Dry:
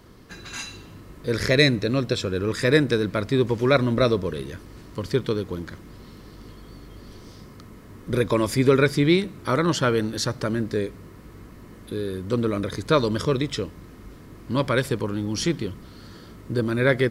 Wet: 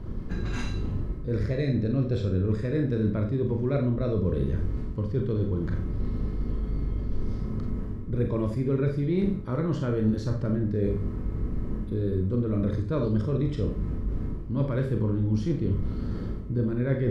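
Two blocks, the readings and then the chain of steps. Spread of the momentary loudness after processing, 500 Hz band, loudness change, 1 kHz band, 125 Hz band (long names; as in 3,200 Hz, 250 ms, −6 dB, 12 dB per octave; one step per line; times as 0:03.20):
7 LU, −7.0 dB, −5.0 dB, −13.0 dB, +1.5 dB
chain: spectral tilt −4.5 dB per octave
reversed playback
downward compressor 10 to 1, threshold −24 dBFS, peak gain reduction 19.5 dB
reversed playback
four-comb reverb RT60 0.39 s, combs from 29 ms, DRR 2.5 dB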